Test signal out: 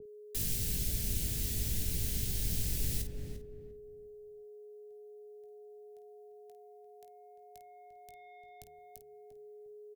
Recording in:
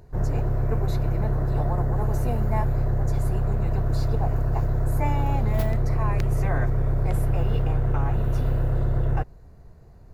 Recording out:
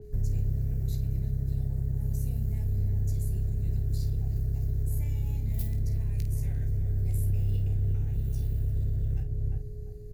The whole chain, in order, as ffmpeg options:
-filter_complex "[0:a]bandreject=f=76.5:t=h:w=4,bandreject=f=153:t=h:w=4,bandreject=f=229.5:t=h:w=4,bandreject=f=306:t=h:w=4,bandreject=f=382.5:t=h:w=4,bandreject=f=459:t=h:w=4,asoftclip=type=tanh:threshold=-15dB,asplit=2[a][b];[b]adelay=347,lowpass=f=1k:p=1,volume=-6dB,asplit=2[c][d];[d]adelay=347,lowpass=f=1k:p=1,volume=0.29,asplit=2[e][f];[f]adelay=347,lowpass=f=1k:p=1,volume=0.29,asplit=2[g][h];[h]adelay=347,lowpass=f=1k:p=1,volume=0.29[i];[c][e][g][i]amix=inputs=4:normalize=0[j];[a][j]amix=inputs=2:normalize=0,alimiter=limit=-22dB:level=0:latency=1:release=209,crystalizer=i=5.5:c=0,aeval=exprs='val(0)+0.01*sin(2*PI*420*n/s)':c=same,acrossover=split=130|3000[k][l][m];[l]acompressor=threshold=-44dB:ratio=2.5[n];[k][n][m]amix=inputs=3:normalize=0,firequalizer=gain_entry='entry(170,0);entry(360,-8);entry(1100,-29);entry(1700,-16)':delay=0.05:min_phase=1,asplit=2[o][p];[p]aecho=0:1:19|51:0.355|0.316[q];[o][q]amix=inputs=2:normalize=0,adynamicequalizer=threshold=0.002:dfrequency=4000:dqfactor=0.7:tfrequency=4000:tqfactor=0.7:attack=5:release=100:ratio=0.375:range=2:mode=cutabove:tftype=highshelf,volume=3dB"

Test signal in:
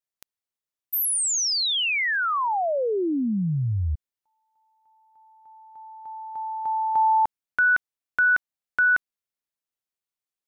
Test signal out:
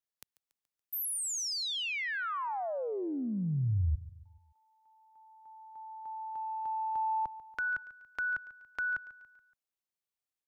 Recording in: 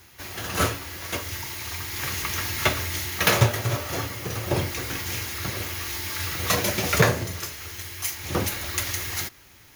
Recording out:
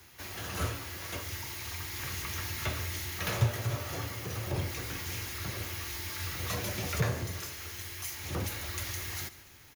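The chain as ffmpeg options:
-filter_complex "[0:a]acrossover=split=130[a][b];[b]acompressor=threshold=-36dB:ratio=2:attack=2:release=25:knee=2.83:detection=peak[c];[a][c]amix=inputs=2:normalize=0,aecho=1:1:142|284|426|568:0.133|0.064|0.0307|0.0147,volume=-4dB"

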